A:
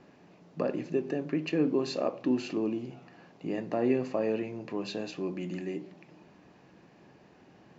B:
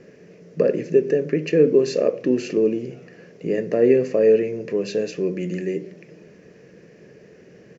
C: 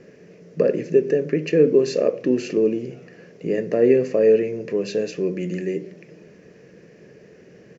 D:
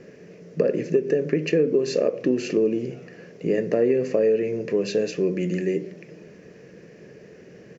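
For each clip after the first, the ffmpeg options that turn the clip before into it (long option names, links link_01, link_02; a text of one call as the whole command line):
ffmpeg -i in.wav -af "firequalizer=gain_entry='entry(110,0);entry(170,4);entry(290,-3);entry(450,12);entry(810,-14);entry(1800,4);entry(3700,-6);entry(5600,5);entry(10000,-2)':delay=0.05:min_phase=1,volume=6.5dB" out.wav
ffmpeg -i in.wav -af anull out.wav
ffmpeg -i in.wav -af "acompressor=threshold=-18dB:ratio=6,volume=1.5dB" out.wav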